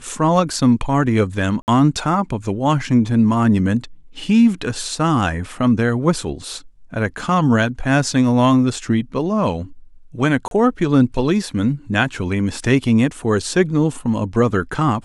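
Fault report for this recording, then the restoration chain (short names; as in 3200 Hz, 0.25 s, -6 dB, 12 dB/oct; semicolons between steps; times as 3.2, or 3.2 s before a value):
1.62–1.68 gap 59 ms
10.48–10.51 gap 32 ms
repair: interpolate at 1.62, 59 ms; interpolate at 10.48, 32 ms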